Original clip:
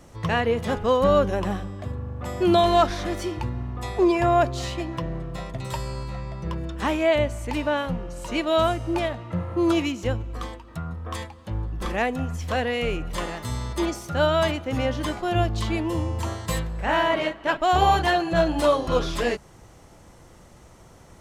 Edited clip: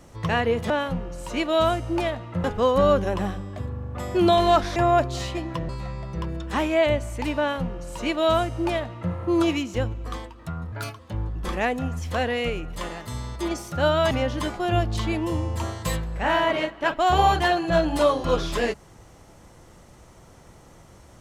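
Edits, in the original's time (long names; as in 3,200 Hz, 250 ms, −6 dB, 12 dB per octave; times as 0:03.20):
0:03.02–0:04.19: remove
0:05.12–0:05.98: remove
0:07.68–0:09.42: duplicate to 0:00.70
0:11.01–0:11.36: play speed 130%
0:12.87–0:13.88: clip gain −3 dB
0:14.48–0:14.74: remove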